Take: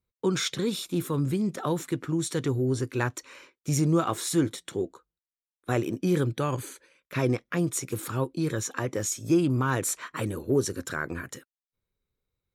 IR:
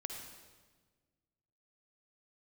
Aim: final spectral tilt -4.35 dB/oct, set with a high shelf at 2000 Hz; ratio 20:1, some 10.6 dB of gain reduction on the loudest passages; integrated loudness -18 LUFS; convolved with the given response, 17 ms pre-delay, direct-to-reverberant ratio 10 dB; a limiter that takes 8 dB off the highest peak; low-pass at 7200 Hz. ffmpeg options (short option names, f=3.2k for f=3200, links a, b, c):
-filter_complex "[0:a]lowpass=7.2k,highshelf=f=2k:g=5,acompressor=threshold=-28dB:ratio=20,alimiter=limit=-24dB:level=0:latency=1,asplit=2[a][b];[1:a]atrim=start_sample=2205,adelay=17[c];[b][c]afir=irnorm=-1:irlink=0,volume=-9dB[d];[a][d]amix=inputs=2:normalize=0,volume=16.5dB"